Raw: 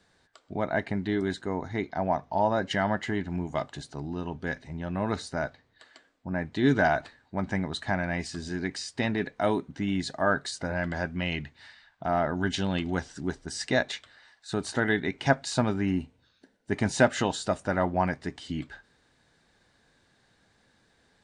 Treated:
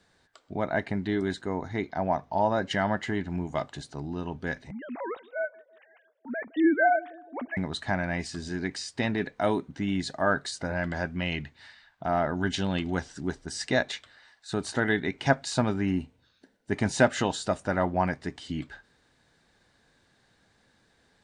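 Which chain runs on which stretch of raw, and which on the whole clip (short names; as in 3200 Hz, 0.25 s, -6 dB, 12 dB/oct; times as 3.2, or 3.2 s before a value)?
4.71–7.57 sine-wave speech + narrowing echo 0.164 s, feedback 62%, band-pass 420 Hz, level -21 dB
whole clip: dry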